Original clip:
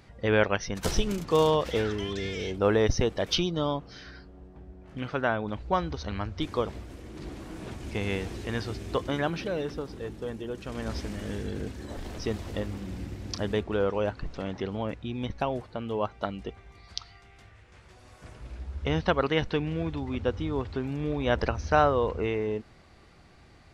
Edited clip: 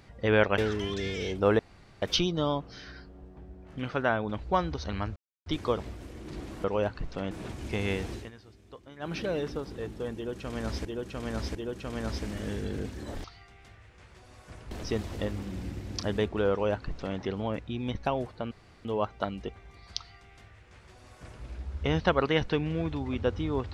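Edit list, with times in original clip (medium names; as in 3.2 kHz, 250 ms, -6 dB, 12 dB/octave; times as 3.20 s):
0.58–1.77 s: delete
2.78–3.21 s: room tone
6.35 s: insert silence 0.30 s
8.36–9.38 s: dip -19.5 dB, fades 0.17 s
10.37–11.07 s: loop, 3 plays
13.86–14.53 s: copy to 7.53 s
15.86 s: insert room tone 0.34 s
16.98–18.45 s: copy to 12.06 s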